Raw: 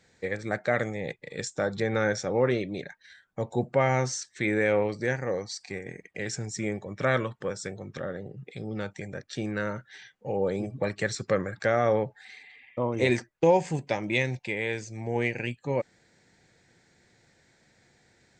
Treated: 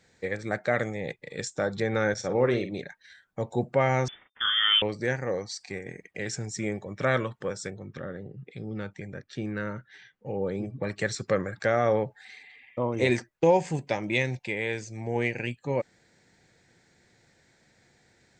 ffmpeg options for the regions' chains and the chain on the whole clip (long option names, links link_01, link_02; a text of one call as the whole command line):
ffmpeg -i in.wav -filter_complex "[0:a]asettb=1/sr,asplit=3[link_01][link_02][link_03];[link_01]atrim=end=2.144[link_04];[link_02]atrim=start=2.14:end=2.81,asetpts=PTS-STARTPTS,afade=type=in:duration=0.004:curve=qsin,afade=type=out:start_time=0.666:duration=0.004:curve=qsin,agate=range=-33dB:threshold=-34dB:ratio=3:release=100:detection=peak,asplit=2[link_05][link_06];[link_06]adelay=49,volume=-9.5dB[link_07];[link_05][link_07]amix=inputs=2:normalize=0,atrim=end_sample=29547[link_08];[link_03]atrim=start=2.806[link_09];[link_04][link_08]acrossfade=duration=0.004:curve1=hsin:curve2=qsin[link_10];[link_10][link_09]acrossfade=duration=0.004:curve1=qsin:curve2=hsin,asettb=1/sr,asplit=3[link_11][link_12][link_13];[link_11]atrim=end=4.084[link_14];[link_12]atrim=start=4.08:end=4.82,asetpts=PTS-STARTPTS,afade=type=in:duration=0.004:curve=qsin,afade=type=out:start_time=0.736:duration=0.004:curve=qsin,aeval=exprs='sgn(val(0))*max(abs(val(0))-0.00376,0)':channel_layout=same,lowpass=frequency=3100:width_type=q:width=0.5098,lowpass=frequency=3100:width_type=q:width=0.6013,lowpass=frequency=3100:width_type=q:width=0.9,lowpass=frequency=3100:width_type=q:width=2.563,afreqshift=-3600,asplit=2[link_15][link_16];[link_16]adelay=40,volume=-4dB[link_17];[link_15][link_17]amix=inputs=2:normalize=0,atrim=end_sample=32634[link_18];[link_13]atrim=start=4.816[link_19];[link_14][link_18]acrossfade=duration=0.004:curve1=hsin:curve2=qsin[link_20];[link_20][link_19]acrossfade=duration=0.004:curve1=qsin:curve2=hsin,asettb=1/sr,asplit=3[link_21][link_22][link_23];[link_21]atrim=end=7.704[link_24];[link_22]atrim=start=7.7:end=10.89,asetpts=PTS-STARTPTS,afade=type=in:duration=0.004:curve=qsin,afade=type=out:start_time=3.186:duration=0.004:curve=qsin,lowpass=frequency=2300:poles=1,equalizer=frequency=680:width=1.3:gain=-5.5[link_25];[link_23]atrim=start=10.886[link_26];[link_24][link_25]acrossfade=duration=0.004:curve1=hsin:curve2=qsin[link_27];[link_27][link_26]acrossfade=duration=0.004:curve1=qsin:curve2=hsin" out.wav